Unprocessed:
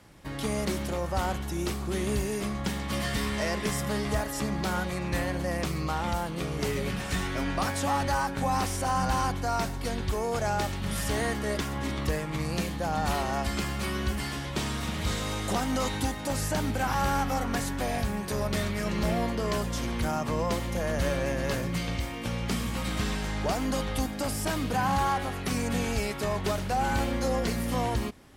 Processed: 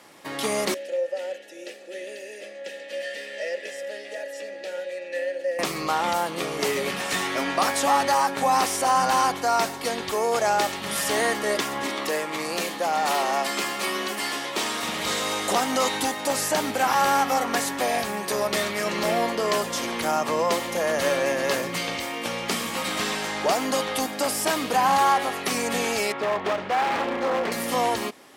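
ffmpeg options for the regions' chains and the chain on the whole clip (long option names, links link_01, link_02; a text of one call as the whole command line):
ffmpeg -i in.wav -filter_complex "[0:a]asettb=1/sr,asplit=3[link_01][link_02][link_03];[link_01]atrim=end=0.744[link_04];[link_02]atrim=start=0.74:end=5.59,asetpts=PTS-STARTPTS,afade=type=in:duration=0.004:curve=qsin,afade=type=out:start_time=4.846:duration=0.004:curve=qsin,asplit=3[link_05][link_06][link_07];[link_05]bandpass=frequency=530:width_type=q:width=8,volume=0dB[link_08];[link_06]bandpass=frequency=1840:width_type=q:width=8,volume=-6dB[link_09];[link_07]bandpass=frequency=2480:width_type=q:width=8,volume=-9dB[link_10];[link_08][link_09][link_10]amix=inputs=3:normalize=0,bass=frequency=250:gain=-1,treble=frequency=4000:gain=12,aecho=1:1:3.5:0.37,atrim=end_sample=213885[link_11];[link_03]atrim=start=5.586[link_12];[link_04][link_11]acrossfade=duration=0.004:curve1=hsin:curve2=qsin[link_13];[link_13][link_12]acrossfade=duration=0.004:curve1=qsin:curve2=hsin,asettb=1/sr,asplit=3[link_14][link_15][link_16];[link_14]atrim=end=11.864[link_17];[link_15]atrim=start=11.86:end=14.83,asetpts=PTS-STARTPTS,afade=type=in:duration=0.004:curve=qsin,afade=type=out:start_time=2.966:duration=0.004:curve=qsin,highpass=210,asoftclip=type=hard:threshold=-26dB[link_18];[link_16]atrim=start=14.826[link_19];[link_17][link_18]acrossfade=duration=0.004:curve1=hsin:curve2=qsin[link_20];[link_20][link_19]acrossfade=duration=0.004:curve1=qsin:curve2=hsin,asettb=1/sr,asplit=3[link_21][link_22][link_23];[link_21]atrim=end=26.124[link_24];[link_22]atrim=start=26.12:end=27.52,asetpts=PTS-STARTPTS,afade=type=in:duration=0.004:curve=qsin,afade=type=out:start_time=1.396:duration=0.004:curve=qsin,lowpass=2300,aeval=exprs='0.0596*(abs(mod(val(0)/0.0596+3,4)-2)-1)':channel_layout=same[link_25];[link_23]atrim=start=27.516[link_26];[link_24][link_25]acrossfade=duration=0.004:curve1=hsin:curve2=qsin[link_27];[link_27][link_26]acrossfade=duration=0.004:curve1=qsin:curve2=hsin,highpass=370,bandreject=frequency=1500:width=18,volume=8dB" out.wav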